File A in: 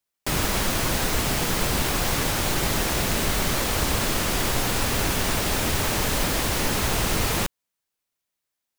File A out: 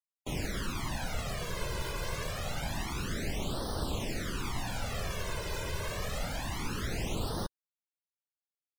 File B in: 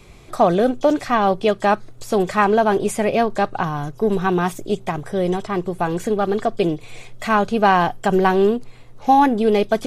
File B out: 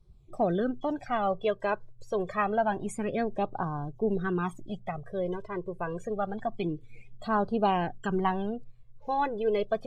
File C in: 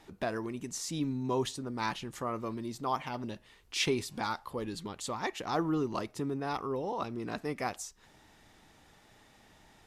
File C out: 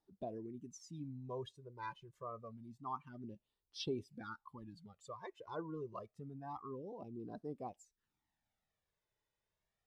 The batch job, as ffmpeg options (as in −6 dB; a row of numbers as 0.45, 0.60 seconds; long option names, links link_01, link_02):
-af "flanger=delay=0.2:depth=1.8:regen=-5:speed=0.27:shape=sinusoidal,afftdn=noise_reduction=19:noise_floor=-35,volume=-8dB"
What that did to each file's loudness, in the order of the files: −13.0, −11.5, −12.5 LU